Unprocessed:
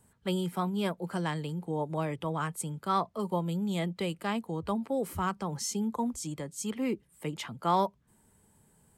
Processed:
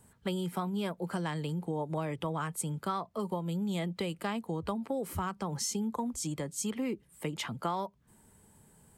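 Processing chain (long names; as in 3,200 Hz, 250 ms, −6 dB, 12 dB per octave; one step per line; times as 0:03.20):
downward compressor 6 to 1, threshold −34 dBFS, peak gain reduction 12.5 dB
level +3.5 dB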